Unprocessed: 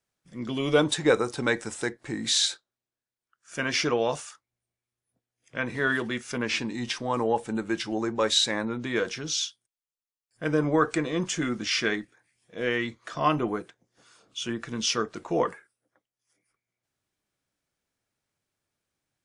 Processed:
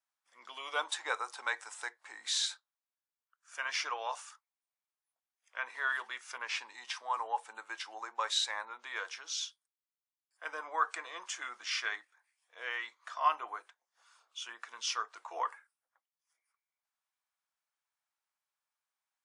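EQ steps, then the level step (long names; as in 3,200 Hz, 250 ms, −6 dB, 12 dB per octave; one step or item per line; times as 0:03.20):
four-pole ladder high-pass 790 Hz, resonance 45%
0.0 dB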